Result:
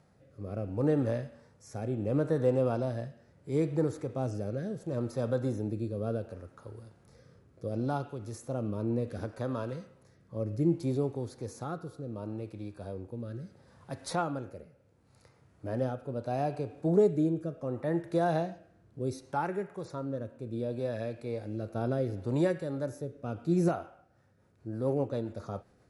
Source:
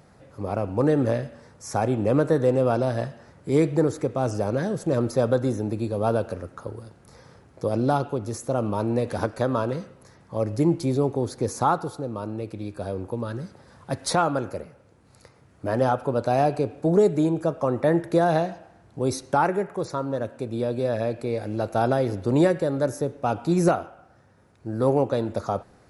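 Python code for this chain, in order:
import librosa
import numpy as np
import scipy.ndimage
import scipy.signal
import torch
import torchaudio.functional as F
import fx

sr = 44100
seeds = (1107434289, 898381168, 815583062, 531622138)

y = fx.rotary_switch(x, sr, hz=0.7, then_hz=7.5, switch_at_s=23.76)
y = fx.hpss(y, sr, part='percussive', gain_db=-7)
y = F.gain(torch.from_numpy(y), -5.0).numpy()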